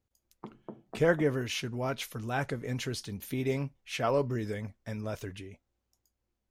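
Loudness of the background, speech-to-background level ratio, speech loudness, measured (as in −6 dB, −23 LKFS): −49.5 LKFS, 16.5 dB, −33.0 LKFS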